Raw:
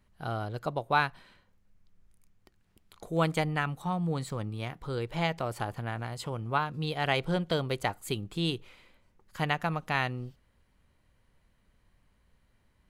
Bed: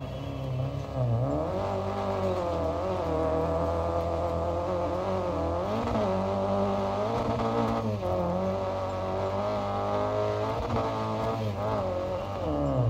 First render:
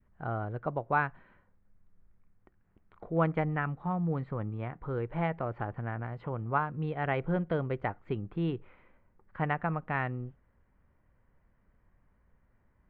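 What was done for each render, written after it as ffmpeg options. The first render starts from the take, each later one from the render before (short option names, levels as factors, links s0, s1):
-af "lowpass=f=1900:w=0.5412,lowpass=f=1900:w=1.3066,adynamicequalizer=threshold=0.00708:dfrequency=910:dqfactor=0.98:tfrequency=910:tqfactor=0.98:attack=5:release=100:ratio=0.375:range=2:mode=cutabove:tftype=bell"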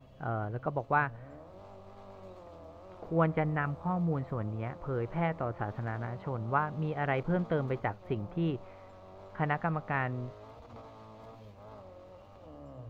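-filter_complex "[1:a]volume=0.0891[s0];[0:a][s0]amix=inputs=2:normalize=0"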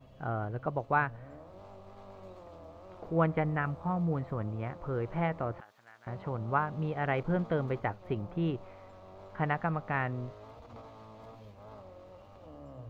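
-filter_complex "[0:a]asettb=1/sr,asplit=3[s0][s1][s2];[s0]atrim=end=5.604[s3];[s1]atrim=start=5.6:end=6.07,asetpts=PTS-STARTPTS,afade=t=in:d=0.004:c=qsin,afade=t=out:st=0.466:d=0.004:c=qsin,aderivative[s4];[s2]atrim=start=6.066[s5];[s3][s4]acrossfade=d=0.004:c1=hsin:c2=qsin[s6];[s6][s5]acrossfade=d=0.004:c1=qsin:c2=hsin"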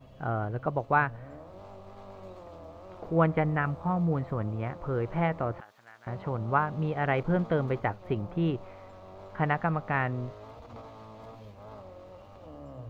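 -af "volume=1.5"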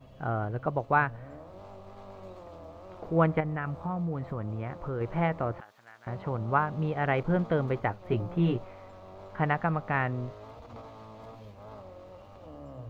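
-filter_complex "[0:a]asettb=1/sr,asplit=3[s0][s1][s2];[s0]atrim=end=3.404[s3];[s1]atrim=start=3.4:end=5.01,asetpts=PTS-STARTPTS,afade=t=in:d=0.004:c=qsin,afade=t=out:st=1.606:d=0.004:c=qsin,acompressor=threshold=0.0316:ratio=2.5:attack=3.2:release=140:knee=1:detection=peak[s4];[s2]atrim=start=5.006[s5];[s3][s4]acrossfade=d=0.004:c1=hsin:c2=qsin[s6];[s6][s5]acrossfade=d=0.004:c1=qsin:c2=hsin,asettb=1/sr,asplit=3[s7][s8][s9];[s7]atrim=end=8.094[s10];[s8]atrim=start=8.09:end=8.64,asetpts=PTS-STARTPTS,afade=t=in:d=0.004:c=qsin,afade=t=out:st=0.546:d=0.004:c=qsin,asplit=2[s11][s12];[s12]adelay=17,volume=0.708[s13];[s11][s13]amix=inputs=2:normalize=0,atrim=end_sample=24255[s14];[s9]atrim=start=8.636[s15];[s10][s14]acrossfade=d=0.004:c1=hsin:c2=qsin[s16];[s16][s15]acrossfade=d=0.004:c1=qsin:c2=hsin"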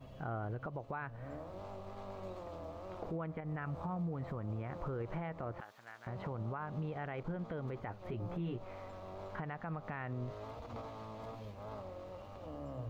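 -af "acompressor=threshold=0.0224:ratio=6,alimiter=level_in=2.37:limit=0.0631:level=0:latency=1:release=71,volume=0.422"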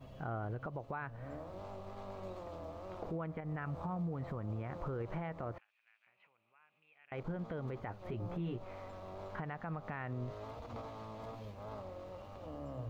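-filter_complex "[0:a]asettb=1/sr,asplit=3[s0][s1][s2];[s0]atrim=end=5.584[s3];[s1]atrim=start=5.58:end=7.12,asetpts=PTS-STARTPTS,afade=t=in:d=0.004:c=qsin,afade=t=out:st=1.536:d=0.004:c=qsin,bandpass=f=2500:t=q:w=11[s4];[s2]atrim=start=7.116[s5];[s3][s4]acrossfade=d=0.004:c1=hsin:c2=qsin[s6];[s6][s5]acrossfade=d=0.004:c1=qsin:c2=hsin"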